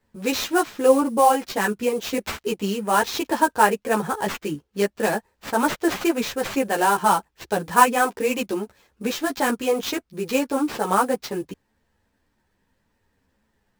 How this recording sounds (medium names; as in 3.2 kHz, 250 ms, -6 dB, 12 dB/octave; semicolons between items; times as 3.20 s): aliases and images of a low sample rate 9.9 kHz, jitter 20%; a shimmering, thickened sound